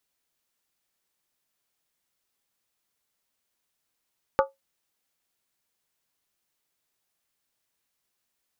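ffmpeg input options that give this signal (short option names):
-f lavfi -i "aevalsrc='0.188*pow(10,-3*t/0.17)*sin(2*PI*545*t)+0.133*pow(10,-3*t/0.135)*sin(2*PI*868.7*t)+0.0944*pow(10,-3*t/0.116)*sin(2*PI*1164.1*t)+0.0668*pow(10,-3*t/0.112)*sin(2*PI*1251.3*t)+0.0473*pow(10,-3*t/0.104)*sin(2*PI*1445.9*t)':d=0.63:s=44100"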